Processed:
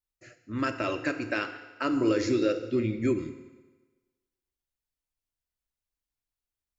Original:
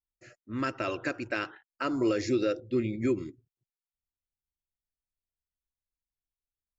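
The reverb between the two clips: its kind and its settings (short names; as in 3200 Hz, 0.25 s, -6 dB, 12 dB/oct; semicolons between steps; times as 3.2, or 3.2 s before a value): FDN reverb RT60 1.3 s, low-frequency decay 0.85×, high-frequency decay 0.9×, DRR 7.5 dB; gain +1.5 dB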